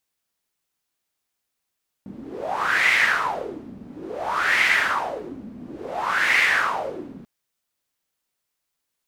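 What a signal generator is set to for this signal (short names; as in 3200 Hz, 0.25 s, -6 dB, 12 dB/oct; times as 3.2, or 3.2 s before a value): wind-like swept noise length 5.19 s, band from 220 Hz, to 2100 Hz, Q 5.7, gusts 3, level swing 20 dB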